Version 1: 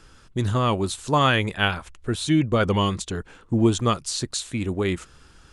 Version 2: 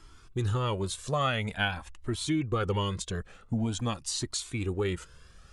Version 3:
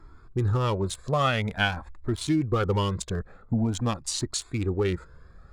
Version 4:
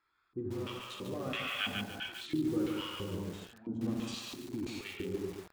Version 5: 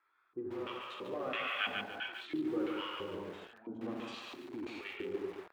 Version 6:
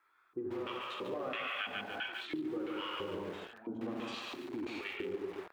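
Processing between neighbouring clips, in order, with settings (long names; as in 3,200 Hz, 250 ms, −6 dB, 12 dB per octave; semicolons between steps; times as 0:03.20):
downward compressor 2.5 to 1, threshold −22 dBFS, peak gain reduction 6.5 dB; flanger whose copies keep moving one way rising 0.47 Hz
adaptive Wiener filter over 15 samples; level +4.5 dB
reverb whose tail is shaped and stops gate 450 ms flat, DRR −3 dB; auto-filter band-pass square 1.5 Hz 290–2,800 Hz; feedback echo at a low word length 143 ms, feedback 35%, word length 7 bits, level −3.5 dB; level −6 dB
three-way crossover with the lows and the highs turned down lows −18 dB, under 340 Hz, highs −19 dB, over 3,000 Hz; level +3 dB
downward compressor 6 to 1, threshold −39 dBFS, peak gain reduction 9.5 dB; level +4 dB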